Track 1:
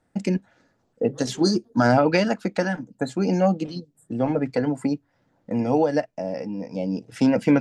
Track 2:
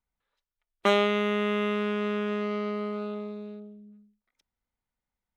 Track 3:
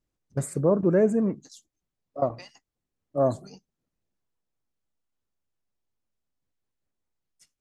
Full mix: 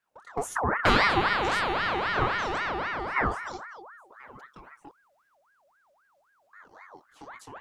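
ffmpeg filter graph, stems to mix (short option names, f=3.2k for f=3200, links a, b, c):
-filter_complex "[0:a]acompressor=threshold=-33dB:ratio=2,volume=-11.5dB,asplit=3[a][b][c];[a]atrim=end=4.89,asetpts=PTS-STARTPTS,afade=t=out:st=4.886:d=0.004:c=hsin[d];[b]atrim=start=4.89:end=6.53,asetpts=PTS-STARTPTS,volume=0[e];[c]atrim=start=6.53,asetpts=PTS-STARTPTS,afade=t=in:d=0.004:c=hsin[f];[d][e][f]concat=n=3:v=0:a=1[g];[1:a]aecho=1:1:6.1:0.82,acontrast=62,volume=-2.5dB[h];[2:a]dynaudnorm=f=210:g=5:m=14dB,volume=2dB[i];[g][i]amix=inputs=2:normalize=0,flanger=delay=18:depth=7.7:speed=1.9,acompressor=threshold=-23dB:ratio=4,volume=0dB[j];[h][j]amix=inputs=2:normalize=0,aeval=exprs='val(0)*sin(2*PI*1100*n/s+1100*0.5/3.8*sin(2*PI*3.8*n/s))':c=same"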